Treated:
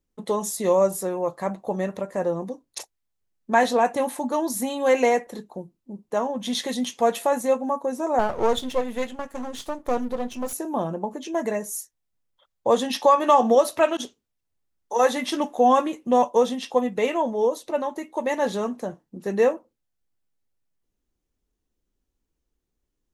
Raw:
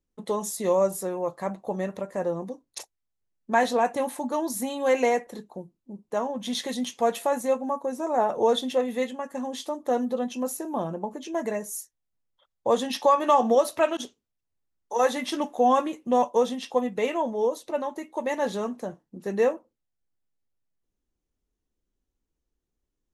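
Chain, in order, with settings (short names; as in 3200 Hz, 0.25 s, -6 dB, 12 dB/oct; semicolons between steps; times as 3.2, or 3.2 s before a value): 8.19–10.53 half-wave gain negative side -12 dB; gain +3 dB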